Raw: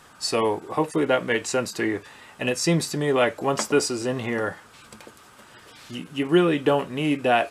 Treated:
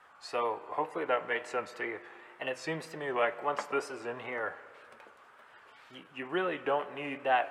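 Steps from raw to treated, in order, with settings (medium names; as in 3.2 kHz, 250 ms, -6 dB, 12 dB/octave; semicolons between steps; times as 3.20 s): wow and flutter 110 cents; three-band isolator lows -17 dB, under 510 Hz, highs -18 dB, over 2.6 kHz; spring tank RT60 2.6 s, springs 31/46 ms, chirp 55 ms, DRR 15 dB; trim -5 dB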